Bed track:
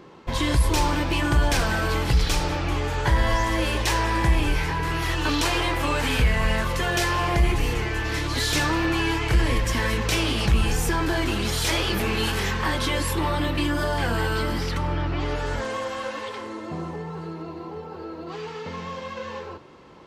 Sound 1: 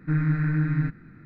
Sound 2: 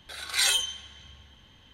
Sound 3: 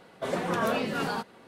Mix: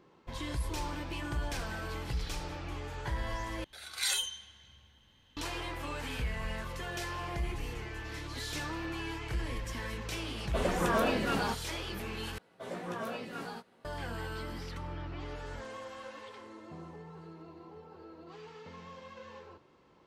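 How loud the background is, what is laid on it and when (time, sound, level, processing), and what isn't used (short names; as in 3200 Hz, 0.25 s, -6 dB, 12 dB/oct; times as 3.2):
bed track -15 dB
3.64 replace with 2 -9 dB + high shelf 5900 Hz +3.5 dB
10.32 add 3 -1.5 dB
12.38 replace with 3 -12.5 dB + doubler 17 ms -4 dB
not used: 1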